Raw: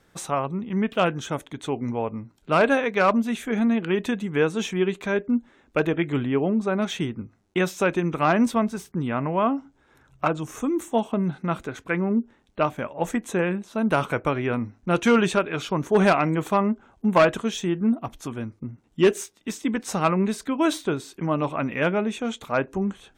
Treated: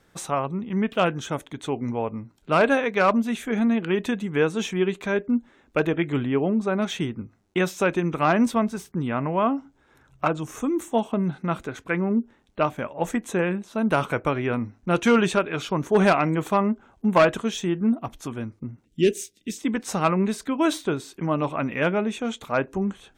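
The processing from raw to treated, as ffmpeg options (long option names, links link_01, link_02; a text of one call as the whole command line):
ffmpeg -i in.wav -filter_complex "[0:a]asettb=1/sr,asplit=3[link_01][link_02][link_03];[link_01]atrim=end=18.854[link_04];[link_02]atrim=start=18.85:end=19.58,asetpts=PTS-STARTPTS,afade=type=in:duration=0.004:curve=qsin,afade=type=out:start_time=0.726:duration=0.004:curve=qsin,asuperstop=centerf=1000:order=4:qfactor=0.53[link_05];[link_03]atrim=start=19.576[link_06];[link_04][link_05]acrossfade=duration=0.004:curve1=hsin:curve2=qsin[link_07];[link_07][link_06]acrossfade=duration=0.004:curve1=qsin:curve2=hsin" out.wav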